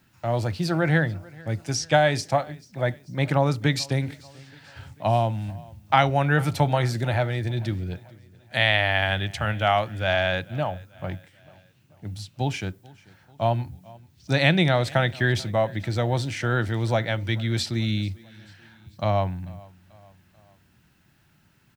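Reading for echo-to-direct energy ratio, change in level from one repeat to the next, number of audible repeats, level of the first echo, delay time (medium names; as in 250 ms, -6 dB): -22.5 dB, -6.0 dB, 2, -23.5 dB, 439 ms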